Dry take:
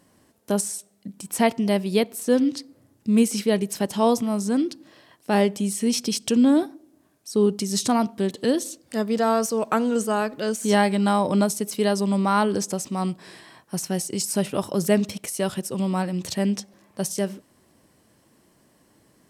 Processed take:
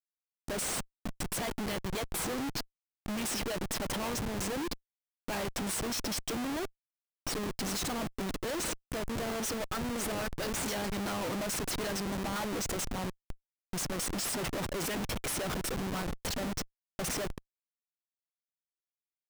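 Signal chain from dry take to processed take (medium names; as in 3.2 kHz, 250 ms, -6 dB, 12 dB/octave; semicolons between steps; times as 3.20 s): harmonic-percussive split harmonic -18 dB; Schmitt trigger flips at -38 dBFS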